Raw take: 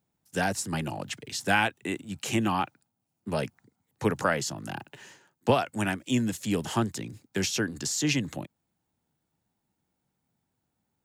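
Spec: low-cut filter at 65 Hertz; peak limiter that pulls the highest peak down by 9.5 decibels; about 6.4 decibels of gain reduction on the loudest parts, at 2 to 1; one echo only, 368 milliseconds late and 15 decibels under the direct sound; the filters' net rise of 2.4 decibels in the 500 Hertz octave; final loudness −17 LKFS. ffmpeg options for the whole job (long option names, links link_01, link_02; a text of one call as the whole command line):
ffmpeg -i in.wav -af "highpass=65,equalizer=frequency=500:width_type=o:gain=3,acompressor=threshold=-27dB:ratio=2,alimiter=limit=-22.5dB:level=0:latency=1,aecho=1:1:368:0.178,volume=17dB" out.wav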